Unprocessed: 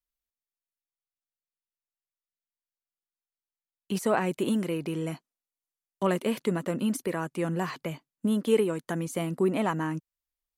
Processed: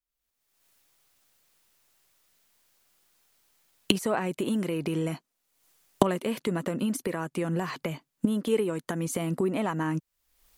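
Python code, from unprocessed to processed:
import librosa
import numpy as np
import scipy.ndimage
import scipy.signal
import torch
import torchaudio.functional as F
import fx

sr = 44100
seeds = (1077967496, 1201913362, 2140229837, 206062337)

y = fx.recorder_agc(x, sr, target_db=-18.5, rise_db_per_s=45.0, max_gain_db=30)
y = y * 10.0 ** (-2.5 / 20.0)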